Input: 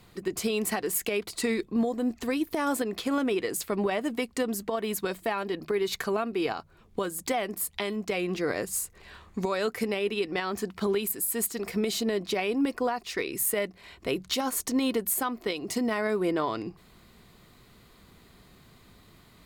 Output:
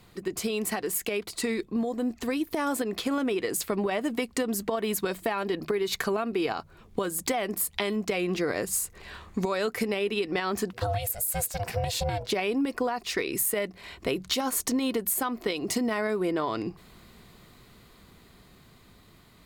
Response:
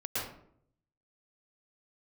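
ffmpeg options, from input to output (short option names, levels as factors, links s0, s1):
-filter_complex "[0:a]dynaudnorm=f=570:g=11:m=1.78,asettb=1/sr,asplit=3[s0][s1][s2];[s0]atrim=end=10.734[s3];[s1]atrim=start=10.73:end=12.32,asetpts=PTS-STARTPTS,afade=t=in:d=0.004:c=qsin,afade=t=out:st=1.586:d=0.004:c=qsin,aeval=exprs='val(0)*sin(2*PI*300*n/s)':c=same[s4];[s2]atrim=start=12.316[s5];[s3][s4]acrossfade=d=0.004:c1=hsin:c2=qsin[s6];[s6][s5]acrossfade=d=0.004:c1=qsin:c2=hsin,acompressor=threshold=0.0631:ratio=6"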